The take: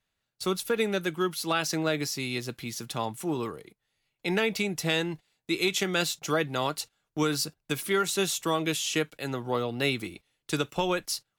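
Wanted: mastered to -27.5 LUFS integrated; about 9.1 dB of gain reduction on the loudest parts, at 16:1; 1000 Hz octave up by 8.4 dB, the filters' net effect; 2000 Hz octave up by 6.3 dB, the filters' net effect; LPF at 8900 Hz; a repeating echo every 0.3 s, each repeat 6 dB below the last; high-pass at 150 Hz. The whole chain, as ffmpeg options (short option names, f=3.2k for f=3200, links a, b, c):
-af "highpass=150,lowpass=8.9k,equalizer=f=1k:t=o:g=9,equalizer=f=2k:t=o:g=5.5,acompressor=threshold=-25dB:ratio=16,aecho=1:1:300|600|900|1200|1500|1800:0.501|0.251|0.125|0.0626|0.0313|0.0157,volume=2.5dB"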